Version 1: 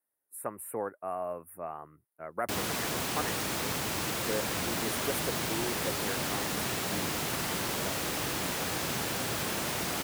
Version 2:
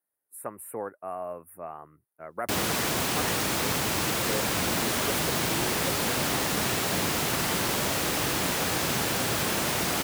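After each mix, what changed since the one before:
background +5.5 dB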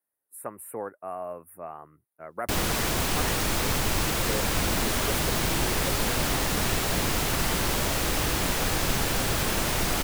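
background: remove high-pass 120 Hz 12 dB/octave

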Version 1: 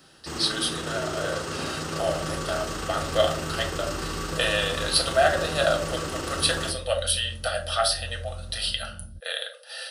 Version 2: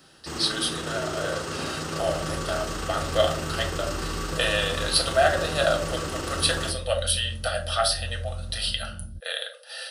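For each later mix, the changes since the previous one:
second sound +3.5 dB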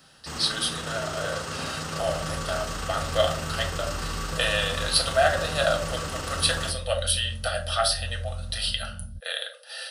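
master: add peaking EQ 350 Hz -11 dB 0.51 oct

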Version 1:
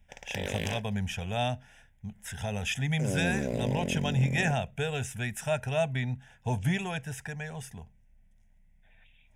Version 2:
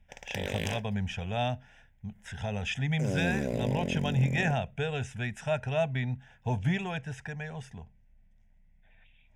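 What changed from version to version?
speech: add distance through air 100 m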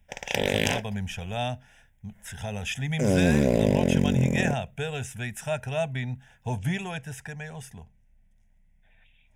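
speech: remove distance through air 100 m; background +10.0 dB

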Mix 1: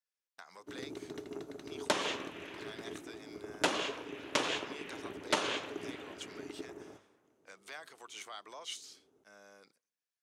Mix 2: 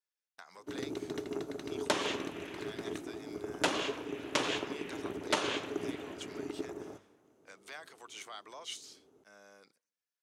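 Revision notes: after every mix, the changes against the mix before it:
first sound +5.5 dB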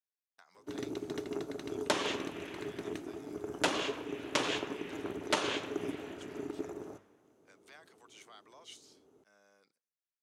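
speech -9.0 dB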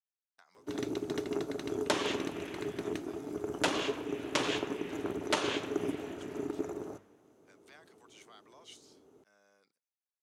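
speech: send off; first sound +3.5 dB

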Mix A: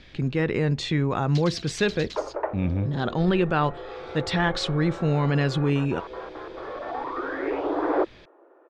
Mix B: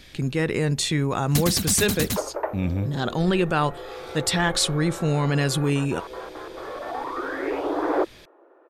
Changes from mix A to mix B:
first sound: remove band-pass filter 4.4 kHz, Q 1.5; master: remove distance through air 180 m

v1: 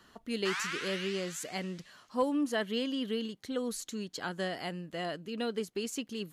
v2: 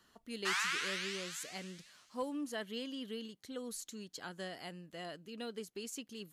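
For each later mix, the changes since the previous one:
speech -9.5 dB; master: add treble shelf 4.4 kHz +7 dB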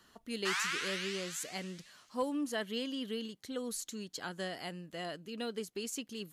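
speech +4.5 dB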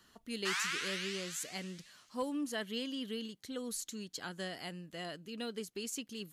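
master: add peaking EQ 690 Hz -3.5 dB 2.3 oct

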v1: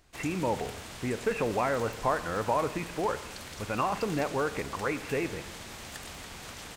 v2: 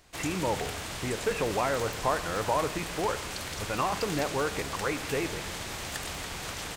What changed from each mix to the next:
background +6.5 dB; master: add peaking EQ 230 Hz -6.5 dB 0.22 oct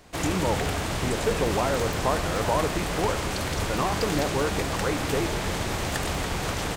background +8.0 dB; master: add tilt shelf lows +4.5 dB, about 1.2 kHz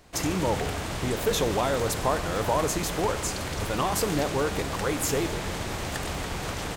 speech: remove brick-wall FIR low-pass 2.8 kHz; background -3.5 dB

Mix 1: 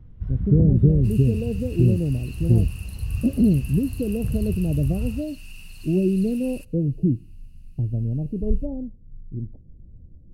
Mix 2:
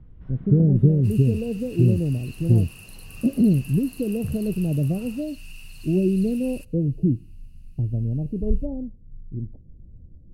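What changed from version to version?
first sound: add band-pass 290–3600 Hz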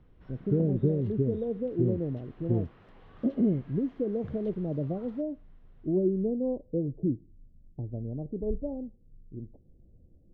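second sound: muted; master: add tone controls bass -13 dB, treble +7 dB

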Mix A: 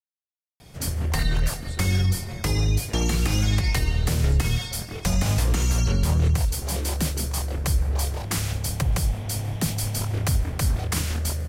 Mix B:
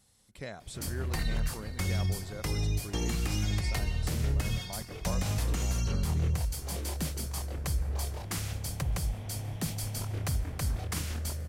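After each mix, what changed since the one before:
speech: entry -1.00 s; background -8.5 dB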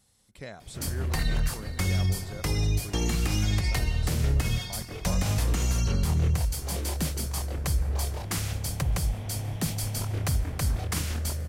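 background +4.5 dB

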